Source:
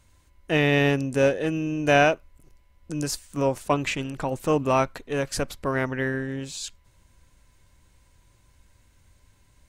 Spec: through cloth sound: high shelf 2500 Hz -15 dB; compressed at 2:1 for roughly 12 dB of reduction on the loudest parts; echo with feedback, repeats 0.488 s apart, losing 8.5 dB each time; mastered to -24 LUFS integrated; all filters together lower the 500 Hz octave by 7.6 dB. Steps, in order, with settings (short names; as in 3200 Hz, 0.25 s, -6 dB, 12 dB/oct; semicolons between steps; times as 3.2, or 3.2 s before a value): bell 500 Hz -8.5 dB; compressor 2:1, threshold -40 dBFS; high shelf 2500 Hz -15 dB; feedback echo 0.488 s, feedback 38%, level -8.5 dB; gain +15 dB